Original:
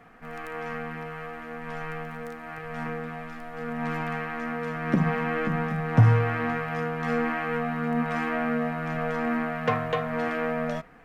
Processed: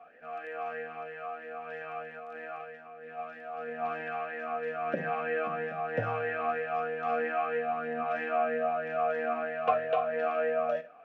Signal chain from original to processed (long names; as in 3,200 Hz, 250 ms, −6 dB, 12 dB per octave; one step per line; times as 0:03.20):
0:02.19–0:03.19: compressor whose output falls as the input rises −40 dBFS, ratio −1
convolution reverb RT60 0.40 s, pre-delay 37 ms, DRR 15.5 dB
formant filter swept between two vowels a-e 3.1 Hz
level +7.5 dB